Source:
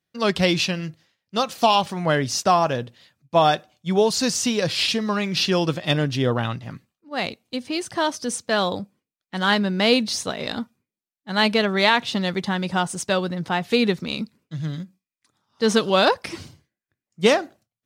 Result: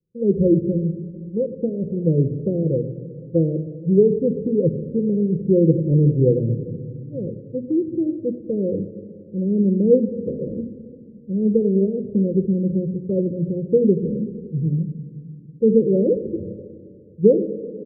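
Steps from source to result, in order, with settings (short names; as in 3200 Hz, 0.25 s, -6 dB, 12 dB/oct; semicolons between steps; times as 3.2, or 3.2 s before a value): steep low-pass 510 Hz 96 dB/oct; notches 60/120/180/240/300 Hz; dynamic EQ 320 Hz, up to +7 dB, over -46 dBFS, Q 7.4; comb 1.7 ms, depth 37%; shoebox room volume 3700 m³, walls mixed, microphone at 0.88 m; gain +5.5 dB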